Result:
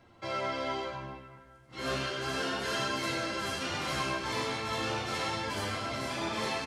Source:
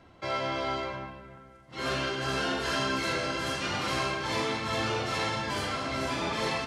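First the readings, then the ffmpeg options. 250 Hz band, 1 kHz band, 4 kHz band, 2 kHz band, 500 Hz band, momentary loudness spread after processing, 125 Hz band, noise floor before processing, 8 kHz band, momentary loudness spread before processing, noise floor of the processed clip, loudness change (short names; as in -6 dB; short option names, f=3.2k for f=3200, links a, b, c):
-3.5 dB, -3.0 dB, -2.5 dB, -3.0 dB, -3.0 dB, 7 LU, -3.5 dB, -54 dBFS, -1.0 dB, 7 LU, -58 dBFS, -3.0 dB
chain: -af "highshelf=f=10k:g=7,aecho=1:1:99|257:0.398|0.119,flanger=delay=8.6:depth=7.7:regen=38:speed=0.33:shape=sinusoidal"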